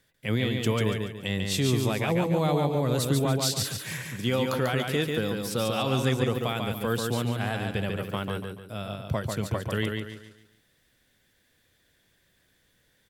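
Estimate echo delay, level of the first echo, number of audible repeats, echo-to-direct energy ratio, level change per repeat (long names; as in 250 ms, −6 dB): 143 ms, −4.0 dB, 4, −3.5 dB, −8.5 dB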